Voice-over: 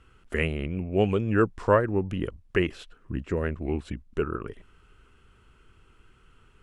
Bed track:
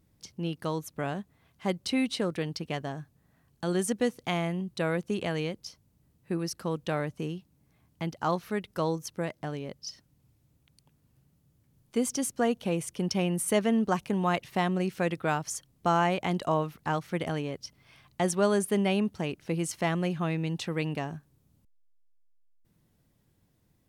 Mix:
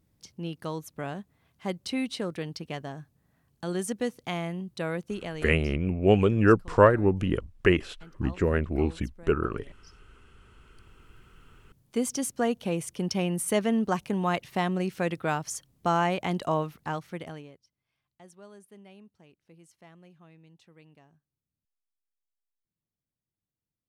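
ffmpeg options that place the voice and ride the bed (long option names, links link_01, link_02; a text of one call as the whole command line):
ffmpeg -i stem1.wav -i stem2.wav -filter_complex "[0:a]adelay=5100,volume=3dB[link_01];[1:a]volume=15dB,afade=type=out:start_time=5.03:duration=0.86:silence=0.177828,afade=type=in:start_time=10.48:duration=0.64:silence=0.133352,afade=type=out:start_time=16.6:duration=1.04:silence=0.0562341[link_02];[link_01][link_02]amix=inputs=2:normalize=0" out.wav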